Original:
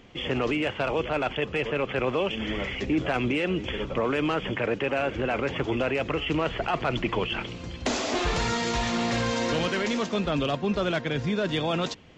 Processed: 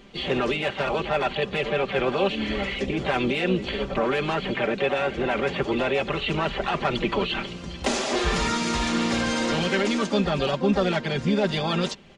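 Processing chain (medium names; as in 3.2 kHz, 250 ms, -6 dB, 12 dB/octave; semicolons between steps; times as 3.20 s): comb 5.1 ms, depth 75%; harmony voices +5 st -8 dB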